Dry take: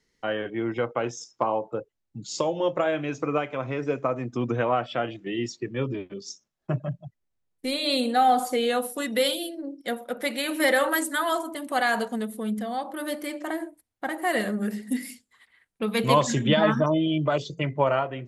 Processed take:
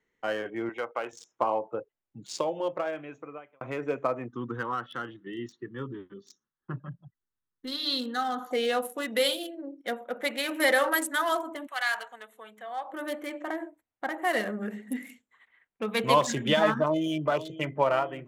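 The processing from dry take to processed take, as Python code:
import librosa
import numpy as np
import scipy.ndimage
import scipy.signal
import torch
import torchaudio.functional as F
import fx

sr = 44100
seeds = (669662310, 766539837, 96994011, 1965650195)

y = fx.highpass(x, sr, hz=700.0, slope=6, at=(0.69, 1.13))
y = fx.fixed_phaser(y, sr, hz=2400.0, stages=6, at=(4.28, 8.51))
y = fx.highpass(y, sr, hz=fx.line((11.66, 1500.0), (12.91, 660.0)), slope=12, at=(11.66, 12.91), fade=0.02)
y = fx.echo_throw(y, sr, start_s=16.77, length_s=0.5, ms=500, feedback_pct=60, wet_db=-14.5)
y = fx.edit(y, sr, fx.fade_out_span(start_s=2.28, length_s=1.33), tone=tone)
y = fx.wiener(y, sr, points=9)
y = fx.low_shelf(y, sr, hz=250.0, db=-11.5)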